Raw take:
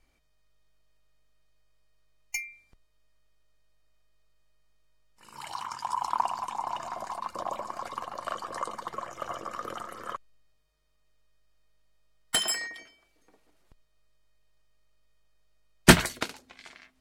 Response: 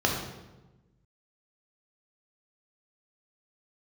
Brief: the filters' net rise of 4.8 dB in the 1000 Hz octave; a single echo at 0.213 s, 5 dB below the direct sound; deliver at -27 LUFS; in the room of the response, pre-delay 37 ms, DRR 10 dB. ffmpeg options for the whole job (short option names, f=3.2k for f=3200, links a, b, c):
-filter_complex "[0:a]equalizer=f=1k:t=o:g=5.5,aecho=1:1:213:0.562,asplit=2[a][b];[1:a]atrim=start_sample=2205,adelay=37[c];[b][c]afir=irnorm=-1:irlink=0,volume=-23dB[d];[a][d]amix=inputs=2:normalize=0,volume=-0.5dB"